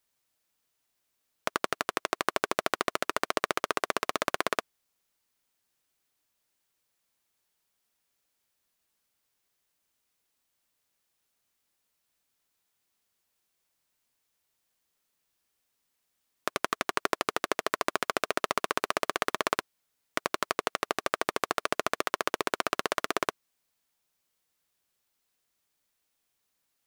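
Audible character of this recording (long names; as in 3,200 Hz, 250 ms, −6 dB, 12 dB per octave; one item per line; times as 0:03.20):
background noise floor −79 dBFS
spectral slope −2.0 dB per octave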